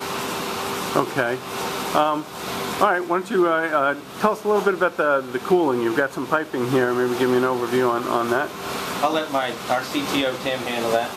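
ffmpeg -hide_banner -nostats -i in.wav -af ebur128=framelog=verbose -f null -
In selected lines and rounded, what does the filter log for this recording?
Integrated loudness:
  I:         -22.0 LUFS
  Threshold: -31.9 LUFS
Loudness range:
  LRA:         2.4 LU
  Threshold: -41.5 LUFS
  LRA low:   -23.0 LUFS
  LRA high:  -20.6 LUFS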